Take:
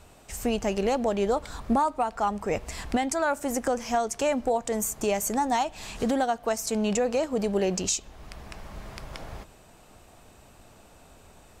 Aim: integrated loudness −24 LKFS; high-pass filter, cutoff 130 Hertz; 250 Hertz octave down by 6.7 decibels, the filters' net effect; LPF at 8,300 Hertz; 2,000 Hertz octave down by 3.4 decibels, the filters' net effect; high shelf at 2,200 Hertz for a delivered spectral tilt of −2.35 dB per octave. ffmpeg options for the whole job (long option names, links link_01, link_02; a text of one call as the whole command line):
ffmpeg -i in.wav -af "highpass=130,lowpass=8300,equalizer=frequency=250:width_type=o:gain=-7.5,equalizer=frequency=2000:width_type=o:gain=-7.5,highshelf=frequency=2200:gain=5,volume=4.5dB" out.wav